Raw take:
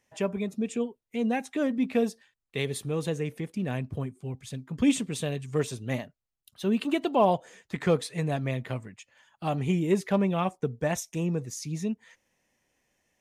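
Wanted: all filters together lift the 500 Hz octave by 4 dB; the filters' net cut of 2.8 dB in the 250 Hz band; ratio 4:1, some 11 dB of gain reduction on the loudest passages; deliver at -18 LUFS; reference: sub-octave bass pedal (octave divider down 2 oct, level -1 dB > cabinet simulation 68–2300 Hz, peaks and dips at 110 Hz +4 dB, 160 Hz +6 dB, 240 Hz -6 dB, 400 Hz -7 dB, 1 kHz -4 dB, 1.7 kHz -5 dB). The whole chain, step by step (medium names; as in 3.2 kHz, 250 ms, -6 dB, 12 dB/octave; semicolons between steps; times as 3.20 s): peaking EQ 250 Hz -5.5 dB; peaking EQ 500 Hz +9 dB; compression 4:1, threshold -26 dBFS; octave divider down 2 oct, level -1 dB; cabinet simulation 68–2300 Hz, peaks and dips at 110 Hz +4 dB, 160 Hz +6 dB, 240 Hz -6 dB, 400 Hz -7 dB, 1 kHz -4 dB, 1.7 kHz -5 dB; trim +14.5 dB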